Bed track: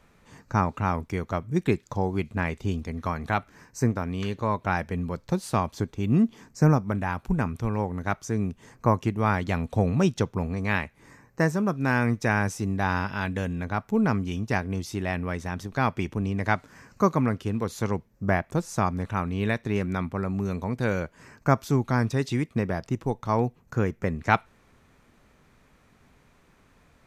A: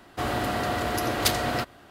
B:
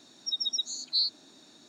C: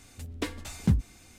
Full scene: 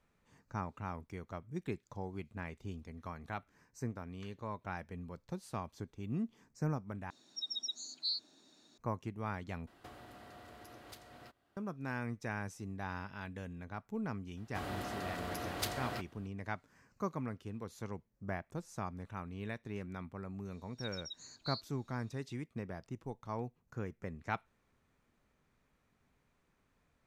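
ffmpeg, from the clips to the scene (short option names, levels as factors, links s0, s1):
-filter_complex "[2:a]asplit=2[s0][s1];[1:a]asplit=2[s2][s3];[0:a]volume=0.158[s4];[s2]acompressor=threshold=0.00891:ratio=5:attack=34:release=721:knee=1:detection=rms[s5];[s4]asplit=3[s6][s7][s8];[s6]atrim=end=7.104[s9];[s0]atrim=end=1.68,asetpts=PTS-STARTPTS,volume=0.335[s10];[s7]atrim=start=8.776:end=9.674[s11];[s5]atrim=end=1.9,asetpts=PTS-STARTPTS,volume=0.251[s12];[s8]atrim=start=11.566[s13];[s3]atrim=end=1.9,asetpts=PTS-STARTPTS,volume=0.2,afade=t=in:d=0.004:c=hsin,afade=t=out:st=1.896:d=0.004:c=hsin,adelay=14370[s14];[s1]atrim=end=1.68,asetpts=PTS-STARTPTS,volume=0.141,afade=t=in:d=0.004:c=hsin,afade=t=out:st=1.676:d=0.004:c=hsin,adelay=904932S[s15];[s9][s10]acrossfade=d=0.004:c1=hsin:c2=hsin[s16];[s16][s11]acrossfade=d=0.004:c1=hsin:c2=hsin[s17];[s17][s12]acrossfade=d=0.004:c1=hsin:c2=hsin[s18];[s18][s13]acrossfade=d=0.004:c1=hsin:c2=hsin[s19];[s19][s14][s15]amix=inputs=3:normalize=0"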